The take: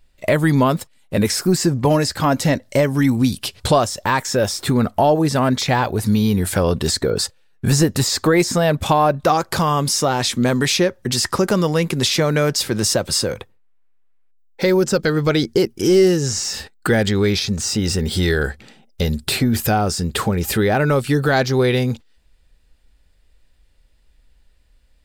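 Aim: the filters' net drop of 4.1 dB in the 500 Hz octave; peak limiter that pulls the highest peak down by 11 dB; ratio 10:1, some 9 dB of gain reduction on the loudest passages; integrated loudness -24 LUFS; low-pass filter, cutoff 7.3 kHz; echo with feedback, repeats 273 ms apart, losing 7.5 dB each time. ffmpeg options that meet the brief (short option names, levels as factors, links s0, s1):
-af "lowpass=7300,equalizer=f=500:t=o:g=-5.5,acompressor=threshold=0.0794:ratio=10,alimiter=limit=0.1:level=0:latency=1,aecho=1:1:273|546|819|1092|1365:0.422|0.177|0.0744|0.0312|0.0131,volume=1.68"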